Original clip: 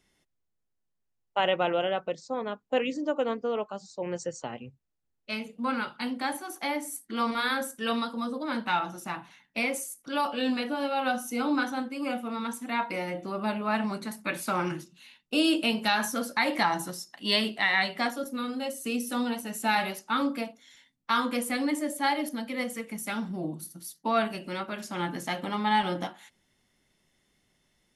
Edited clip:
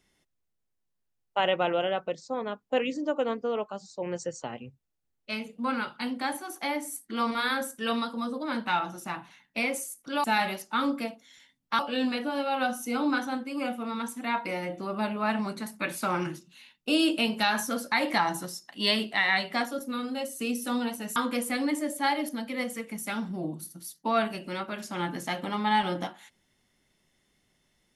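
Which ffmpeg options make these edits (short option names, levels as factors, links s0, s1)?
-filter_complex "[0:a]asplit=4[s0][s1][s2][s3];[s0]atrim=end=10.242[s4];[s1]atrim=start=19.608:end=21.162[s5];[s2]atrim=start=10.238:end=19.612[s6];[s3]atrim=start=21.158[s7];[s4][s5]acrossfade=d=0.004:c1=hsin:c2=hsin[s8];[s8][s6]acrossfade=d=0.004:c1=hsin:c2=hsin[s9];[s9][s7]acrossfade=d=0.004:c1=hsin:c2=hsin"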